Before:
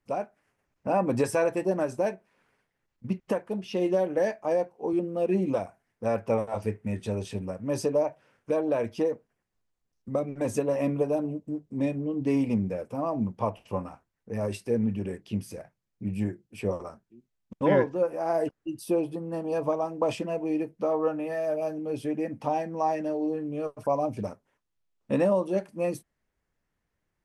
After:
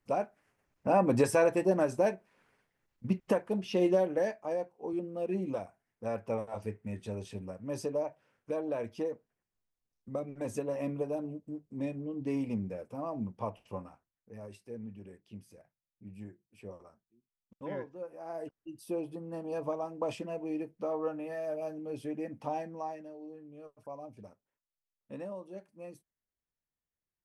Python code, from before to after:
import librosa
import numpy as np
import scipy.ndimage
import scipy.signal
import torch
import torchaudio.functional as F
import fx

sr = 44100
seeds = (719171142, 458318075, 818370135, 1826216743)

y = fx.gain(x, sr, db=fx.line((3.86, -0.5), (4.49, -8.0), (13.65, -8.0), (14.49, -17.0), (17.93, -17.0), (19.19, -7.5), (22.65, -7.5), (23.11, -18.0)))